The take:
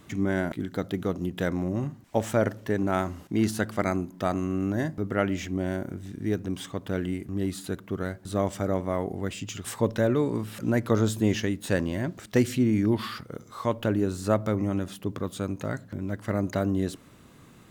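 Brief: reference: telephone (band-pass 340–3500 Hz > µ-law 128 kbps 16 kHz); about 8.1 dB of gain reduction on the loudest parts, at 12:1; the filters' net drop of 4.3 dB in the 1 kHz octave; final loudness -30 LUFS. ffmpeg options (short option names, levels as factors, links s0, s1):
-af "equalizer=f=1000:t=o:g=-6,acompressor=threshold=0.0501:ratio=12,highpass=340,lowpass=3500,volume=2.51" -ar 16000 -c:a pcm_mulaw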